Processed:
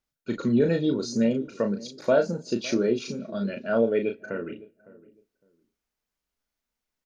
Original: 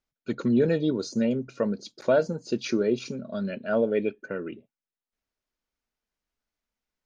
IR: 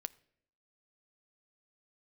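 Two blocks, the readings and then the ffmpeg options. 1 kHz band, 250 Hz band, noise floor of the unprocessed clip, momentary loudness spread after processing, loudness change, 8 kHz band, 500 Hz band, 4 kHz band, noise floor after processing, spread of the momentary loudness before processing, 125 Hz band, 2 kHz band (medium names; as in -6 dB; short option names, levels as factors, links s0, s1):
+1.0 dB, +1.0 dB, under -85 dBFS, 11 LU, +1.0 dB, no reading, +1.0 dB, +2.0 dB, under -85 dBFS, 12 LU, +0.5 dB, +1.0 dB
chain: -filter_complex "[0:a]asplit=2[s0][s1];[s1]adelay=558,lowpass=f=820:p=1,volume=0.112,asplit=2[s2][s3];[s3]adelay=558,lowpass=f=820:p=1,volume=0.23[s4];[s0][s2][s4]amix=inputs=3:normalize=0,asplit=2[s5][s6];[1:a]atrim=start_sample=2205,highshelf=f=4700:g=11,adelay=35[s7];[s6][s7]afir=irnorm=-1:irlink=0,volume=0.596[s8];[s5][s8]amix=inputs=2:normalize=0"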